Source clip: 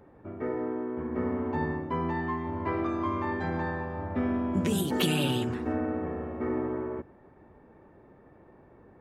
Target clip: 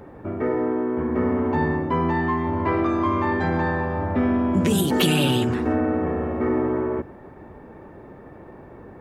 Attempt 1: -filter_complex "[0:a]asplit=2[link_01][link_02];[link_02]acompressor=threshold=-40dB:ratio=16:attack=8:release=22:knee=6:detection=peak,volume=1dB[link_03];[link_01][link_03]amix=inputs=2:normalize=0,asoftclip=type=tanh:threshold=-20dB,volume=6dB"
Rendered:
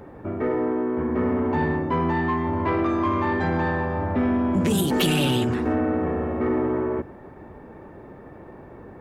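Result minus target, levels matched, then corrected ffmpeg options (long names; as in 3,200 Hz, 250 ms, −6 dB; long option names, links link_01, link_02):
soft clipping: distortion +11 dB
-filter_complex "[0:a]asplit=2[link_01][link_02];[link_02]acompressor=threshold=-40dB:ratio=16:attack=8:release=22:knee=6:detection=peak,volume=1dB[link_03];[link_01][link_03]amix=inputs=2:normalize=0,asoftclip=type=tanh:threshold=-13dB,volume=6dB"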